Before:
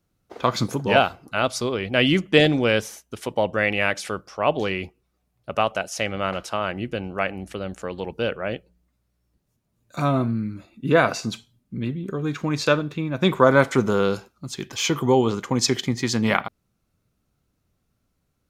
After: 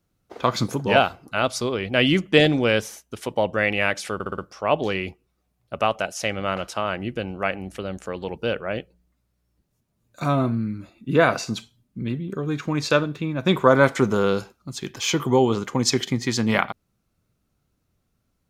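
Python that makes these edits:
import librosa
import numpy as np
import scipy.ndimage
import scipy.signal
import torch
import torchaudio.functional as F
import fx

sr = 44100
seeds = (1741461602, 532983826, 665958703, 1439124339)

y = fx.edit(x, sr, fx.stutter(start_s=4.14, slice_s=0.06, count=5), tone=tone)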